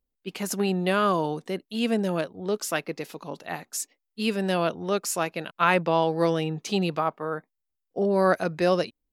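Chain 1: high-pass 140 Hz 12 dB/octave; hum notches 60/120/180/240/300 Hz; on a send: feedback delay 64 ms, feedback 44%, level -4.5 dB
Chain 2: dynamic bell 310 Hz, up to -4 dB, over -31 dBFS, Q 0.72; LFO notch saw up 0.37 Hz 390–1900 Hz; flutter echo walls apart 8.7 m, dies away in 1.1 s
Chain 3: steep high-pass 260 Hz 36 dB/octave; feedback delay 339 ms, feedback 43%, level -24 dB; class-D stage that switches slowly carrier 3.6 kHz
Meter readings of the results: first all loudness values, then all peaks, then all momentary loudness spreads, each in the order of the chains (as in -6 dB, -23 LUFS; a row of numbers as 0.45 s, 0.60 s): -25.0 LUFS, -26.5 LUFS, -26.5 LUFS; -3.0 dBFS, -5.0 dBFS, -9.5 dBFS; 13 LU, 11 LU, 7 LU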